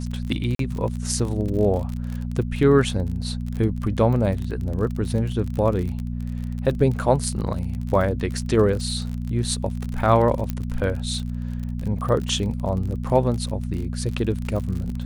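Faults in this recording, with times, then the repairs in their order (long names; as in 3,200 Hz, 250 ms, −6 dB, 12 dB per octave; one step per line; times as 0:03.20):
surface crackle 39 per second −28 dBFS
mains hum 60 Hz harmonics 4 −28 dBFS
0:00.55–0:00.59: drop-out 43 ms
0:10.50: click −13 dBFS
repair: click removal
hum removal 60 Hz, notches 4
repair the gap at 0:00.55, 43 ms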